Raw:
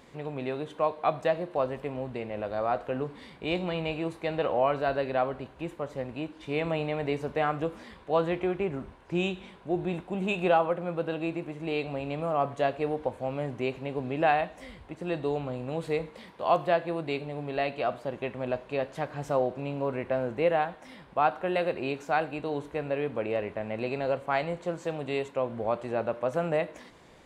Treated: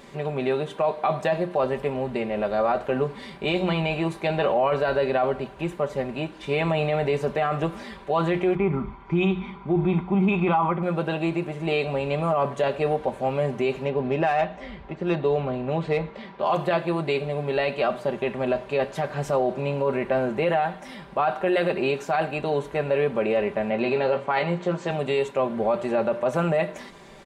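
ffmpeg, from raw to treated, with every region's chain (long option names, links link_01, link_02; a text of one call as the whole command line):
ffmpeg -i in.wav -filter_complex "[0:a]asettb=1/sr,asplit=3[link_01][link_02][link_03];[link_01]atrim=end=8.554[link_04];[link_02]atrim=start=8.55:end=10.83,asetpts=PTS-STARTPTS,afade=type=in:duration=0.004:curve=qsin,afade=type=out:start_time=2.276:duration=0.004:curve=qsin,lowpass=2500,aecho=1:1:0.9:0.67,atrim=end_sample=100548[link_05];[link_03]atrim=start=10.826[link_06];[link_04][link_05]acrossfade=duration=0.004:curve1=hsin:curve2=qsin[link_07];[link_07][link_06]acrossfade=duration=0.004:curve1=qsin:curve2=hsin,asettb=1/sr,asplit=3[link_08][link_09][link_10];[link_08]atrim=end=13.854[link_11];[link_09]atrim=start=13.85:end=16.52,asetpts=PTS-STARTPTS,afade=type=in:duration=0.004:curve=qsin,afade=type=out:start_time=2.666:duration=0.004:curve=qsin,lowpass=7100,adynamicsmooth=sensitivity=3:basefreq=4000[link_12];[link_10]atrim=start=16.516[link_13];[link_11][link_12]acrossfade=duration=0.004:curve1=hsin:curve2=qsin[link_14];[link_14][link_13]acrossfade=duration=0.004:curve1=qsin:curve2=hsin,asettb=1/sr,asplit=3[link_15][link_16][link_17];[link_15]atrim=end=23.704[link_18];[link_16]atrim=start=23.7:end=24.91,asetpts=PTS-STARTPTS,afade=type=in:duration=0.004:curve=qsin,afade=type=out:start_time=1.206:duration=0.004:curve=qsin,highpass=110,lowpass=5300,asplit=2[link_19][link_20];[link_20]adelay=17,volume=-8dB[link_21];[link_19][link_21]amix=inputs=2:normalize=0,atrim=end_sample=53361[link_22];[link_17]atrim=start=24.906[link_23];[link_18][link_22]acrossfade=duration=0.004:curve1=hsin:curve2=qsin[link_24];[link_24][link_23]acrossfade=duration=0.004:curve1=qsin:curve2=hsin,bandreject=frequency=60:width_type=h:width=6,bandreject=frequency=120:width_type=h:width=6,bandreject=frequency=180:width_type=h:width=6,aecho=1:1:5.1:0.6,alimiter=limit=-21dB:level=0:latency=1:release=10,volume=7dB" out.wav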